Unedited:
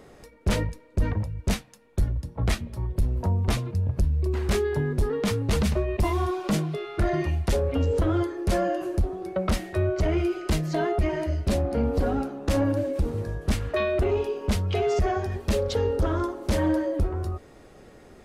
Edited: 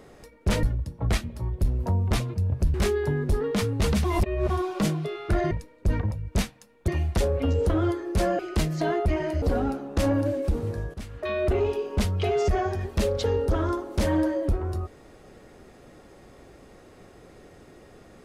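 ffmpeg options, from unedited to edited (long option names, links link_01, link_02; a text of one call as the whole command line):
ffmpeg -i in.wav -filter_complex "[0:a]asplit=10[link_01][link_02][link_03][link_04][link_05][link_06][link_07][link_08][link_09][link_10];[link_01]atrim=end=0.632[link_11];[link_02]atrim=start=1.998:end=4.112[link_12];[link_03]atrim=start=4.428:end=5.732[link_13];[link_04]atrim=start=5.728:end=6.192,asetpts=PTS-STARTPTS,areverse[link_14];[link_05]atrim=start=6.188:end=7.202[link_15];[link_06]atrim=start=0.628:end=2.002[link_16];[link_07]atrim=start=7.198:end=8.712[link_17];[link_08]atrim=start=10.318:end=11.352[link_18];[link_09]atrim=start=11.928:end=13.45,asetpts=PTS-STARTPTS,afade=type=out:start_time=1.518:duration=0.004:curve=hsin:silence=0.211349[link_19];[link_10]atrim=start=13.45,asetpts=PTS-STARTPTS,afade=type=in:duration=0.49:curve=qua:silence=0.211349[link_20];[link_11][link_12]acrossfade=duration=0.004:curve1=hsin:curve2=hsin[link_21];[link_21][link_13]acrossfade=duration=0.004:curve1=hsin:curve2=hsin[link_22];[link_22][link_14]acrossfade=duration=0.004:curve1=hsin:curve2=hsin[link_23];[link_23][link_15]acrossfade=duration=0.004:curve1=hsin:curve2=hsin[link_24];[link_24][link_16]acrossfade=duration=0.004:curve1=hsin:curve2=hsin[link_25];[link_25][link_17]acrossfade=duration=0.004:curve1=hsin:curve2=hsin[link_26];[link_26][link_18]acrossfade=duration=0.004:curve1=hsin:curve2=hsin[link_27];[link_19][link_20]concat=n=2:v=0:a=1[link_28];[link_27][link_28]acrossfade=duration=0.004:curve1=hsin:curve2=hsin" out.wav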